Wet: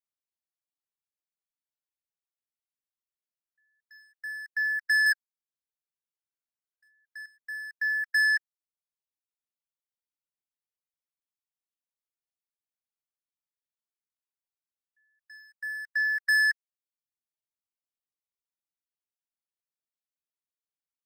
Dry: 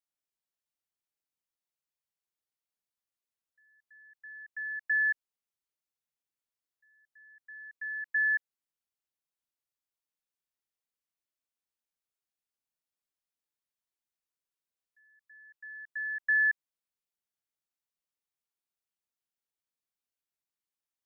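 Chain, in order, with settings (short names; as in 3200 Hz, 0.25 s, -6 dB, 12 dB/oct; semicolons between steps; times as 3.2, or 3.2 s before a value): reverb removal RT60 1.4 s; 5.06–7.26 bell 1600 Hz +12.5 dB 0.22 oct; sample leveller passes 3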